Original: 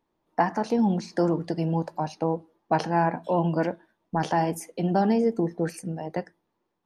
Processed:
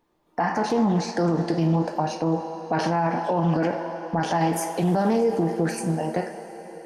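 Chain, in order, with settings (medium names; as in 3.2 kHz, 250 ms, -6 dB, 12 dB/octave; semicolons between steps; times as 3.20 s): on a send at -2 dB: tone controls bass -14 dB, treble 0 dB + reverberation RT60 4.8 s, pre-delay 3 ms; on the sum: peak limiter -19.5 dBFS, peak gain reduction 10.5 dB; loudspeaker Doppler distortion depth 0.16 ms; trim +6 dB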